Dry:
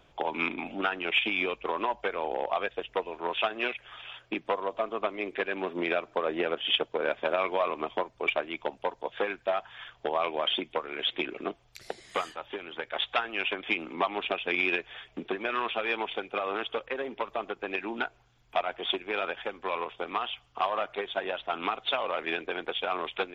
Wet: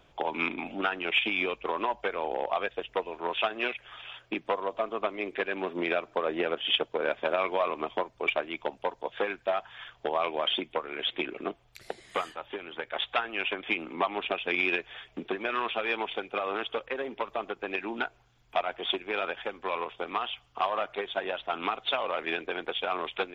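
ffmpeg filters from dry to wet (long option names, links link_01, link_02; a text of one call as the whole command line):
ffmpeg -i in.wav -filter_complex "[0:a]asettb=1/sr,asplit=3[link_01][link_02][link_03];[link_01]atrim=end=10.654[link_04];[link_02]atrim=start=10.65:end=14.35,asetpts=PTS-STARTPTS,afade=type=in:duration=0.004:curve=qsin,afade=type=out:start_time=3.696:duration=0.004:curve=qsin,equalizer=frequency=5600:width=1.5:gain=-5.5[link_05];[link_03]atrim=start=14.346[link_06];[link_04][link_05]acrossfade=duration=0.004:curve1=hsin:curve2=qsin[link_07];[link_07][link_06]acrossfade=duration=0.004:curve1=qsin:curve2=hsin" out.wav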